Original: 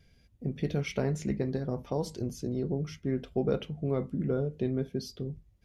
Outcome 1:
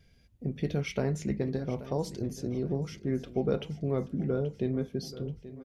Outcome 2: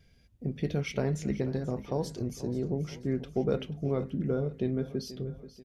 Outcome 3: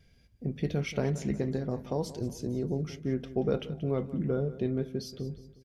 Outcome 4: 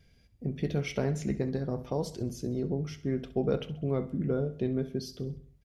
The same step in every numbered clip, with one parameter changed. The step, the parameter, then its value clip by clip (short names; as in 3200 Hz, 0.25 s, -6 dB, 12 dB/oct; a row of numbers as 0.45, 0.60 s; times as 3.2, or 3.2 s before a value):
feedback echo, time: 831, 485, 180, 66 ms